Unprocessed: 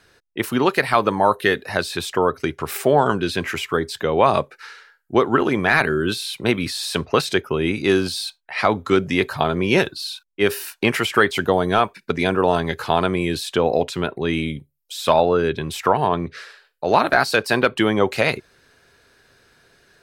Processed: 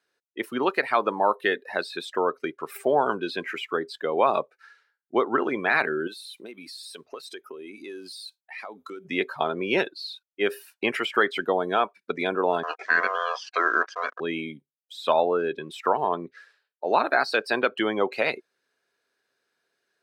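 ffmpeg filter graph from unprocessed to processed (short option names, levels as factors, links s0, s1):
-filter_complex "[0:a]asettb=1/sr,asplit=3[s0][s1][s2];[s0]atrim=end=6.074[s3];[s1]atrim=start=6.07:end=9.05,asetpts=PTS-STARTPTS,afade=t=in:d=0.004:c=qsin,afade=t=out:st=2.976:d=0.004:c=qsin,aemphasis=mode=production:type=50kf,acompressor=threshold=0.0398:ratio=5:attack=3.2:release=140:knee=1:detection=peak[s4];[s2]atrim=start=9.046[s5];[s3][s4]acrossfade=d=0.004:c1=hsin:c2=qsin[s6];[s6][s5]acrossfade=d=0.004:c1=qsin:c2=hsin,asettb=1/sr,asplit=3[s7][s8][s9];[s7]atrim=end=12.634[s10];[s8]atrim=start=12.63:end=14.2,asetpts=PTS-STARTPTS,afade=t=in:d=0.004:c=qsin,afade=t=out:st=1.566:d=0.004:c=qsin,acrusher=bits=4:mix=0:aa=0.5,aeval=exprs='val(0)*sin(2*PI*860*n/s)':c=same,highpass=270,equalizer=f=1100:t=q:w=4:g=3,equalizer=f=1600:t=q:w=4:g=10,equalizer=f=6000:t=q:w=4:g=7,lowpass=f=6700:w=0.5412,lowpass=f=6700:w=1.3066[s11];[s9]atrim=start=14.196[s12];[s10][s11]acrossfade=d=0.004:c1=hsin:c2=qsin[s13];[s13][s12]acrossfade=d=0.004:c1=qsin:c2=hsin,highpass=290,afftdn=nr=15:nf=-29,volume=0.562"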